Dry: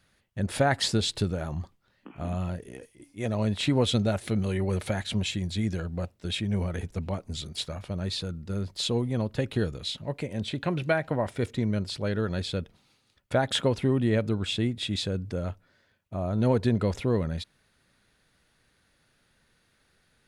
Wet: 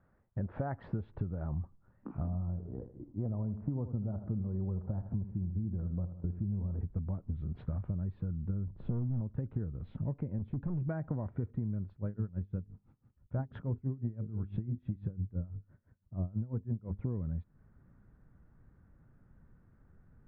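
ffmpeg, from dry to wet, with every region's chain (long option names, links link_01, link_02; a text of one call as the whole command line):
ffmpeg -i in.wav -filter_complex "[0:a]asettb=1/sr,asplit=3[link_01][link_02][link_03];[link_01]atrim=end=2.274[link_04];[link_02]atrim=start=2.27:end=6.8,asetpts=PTS-STARTPTS,afade=type=in:duration=0.004:curve=qsin,afade=type=out:start_time=4.526:duration=0.004:curve=qsin,lowpass=frequency=1200:width=0.5412,lowpass=frequency=1200:width=1.3066,aecho=1:1:79|158|237|316:0.237|0.0901|0.0342|0.013,atrim=end_sample=199773[link_05];[link_03]atrim=start=6.796[link_06];[link_04][link_05]acrossfade=duration=0.004:curve1=hsin:curve2=qsin[link_07];[link_07][link_06]acrossfade=duration=0.004:curve1=qsin:curve2=hsin,asettb=1/sr,asplit=3[link_08][link_09][link_10];[link_08]atrim=end=8.674[link_11];[link_09]atrim=start=8.67:end=9.21,asetpts=PTS-STARTPTS,afade=type=in:duration=0.004:curve=qsin,afade=type=out:start_time=0.536:duration=0.004:curve=qsin,tiltshelf=frequency=650:gain=7,volume=22dB,asoftclip=hard,volume=-22dB[link_12];[link_10]atrim=start=9.206[link_13];[link_11][link_12]acrossfade=duration=0.004:curve1=hsin:curve2=qsin[link_14];[link_14][link_13]acrossfade=duration=0.004:curve1=qsin:curve2=hsin,asettb=1/sr,asplit=3[link_15][link_16][link_17];[link_15]atrim=end=10.384[link_18];[link_16]atrim=start=10.38:end=10.89,asetpts=PTS-STARTPTS,afade=type=in:duration=0.004:curve=qsin,afade=type=out:start_time=0.506:duration=0.004:curve=qsin,equalizer=frequency=1400:width_type=o:width=1.7:gain=-8.5,bandreject=frequency=650:width=6.1,asoftclip=type=hard:threshold=-30dB[link_19];[link_17]atrim=start=10.886[link_20];[link_18][link_19]acrossfade=duration=0.004:curve1=hsin:curve2=qsin[link_21];[link_21][link_20]acrossfade=duration=0.004:curve1=qsin:curve2=hsin,asettb=1/sr,asplit=3[link_22][link_23][link_24];[link_22]atrim=end=11.904[link_25];[link_23]atrim=start=11.9:end=16.99,asetpts=PTS-STARTPTS,afade=type=in:duration=0.004:curve=qsin,afade=type=out:start_time=5.086:duration=0.004:curve=qsin,bass=frequency=250:gain=4,treble=frequency=4000:gain=9,bandreject=frequency=50:width_type=h:width=6,bandreject=frequency=100:width_type=h:width=6,bandreject=frequency=150:width_type=h:width=6,bandreject=frequency=200:width_type=h:width=6,bandreject=frequency=250:width_type=h:width=6,bandreject=frequency=300:width_type=h:width=6,bandreject=frequency=350:width_type=h:width=6,bandreject=frequency=400:width_type=h:width=6,bandreject=frequency=450:width_type=h:width=6,aeval=exprs='val(0)*pow(10,-21*(0.5-0.5*cos(2*PI*6*n/s))/20)':channel_layout=same[link_26];[link_24]atrim=start=16.986[link_27];[link_25][link_26]acrossfade=duration=0.004:curve1=hsin:curve2=qsin[link_28];[link_28][link_27]acrossfade=duration=0.004:curve1=qsin:curve2=hsin,lowpass=frequency=1300:width=0.5412,lowpass=frequency=1300:width=1.3066,asubboost=boost=4:cutoff=250,acompressor=threshold=-32dB:ratio=10" out.wav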